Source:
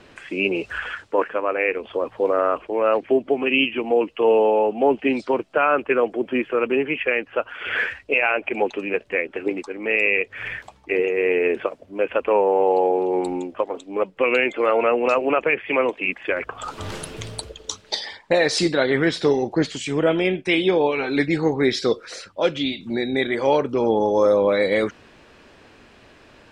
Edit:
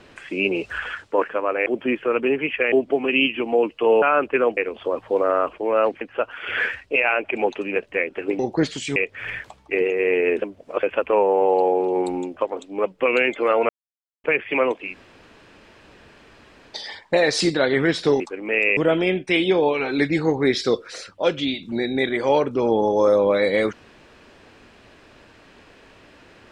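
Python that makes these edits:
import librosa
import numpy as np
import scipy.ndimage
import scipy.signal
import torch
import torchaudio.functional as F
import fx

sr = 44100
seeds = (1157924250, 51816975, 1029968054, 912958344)

y = fx.edit(x, sr, fx.swap(start_s=1.66, length_s=1.44, other_s=6.13, other_length_s=1.06),
    fx.cut(start_s=4.4, length_s=1.18),
    fx.swap(start_s=9.57, length_s=0.57, other_s=19.38, other_length_s=0.57),
    fx.reverse_span(start_s=11.6, length_s=0.41),
    fx.silence(start_s=14.87, length_s=0.55),
    fx.room_tone_fill(start_s=16.03, length_s=1.94, crossfade_s=0.24), tone=tone)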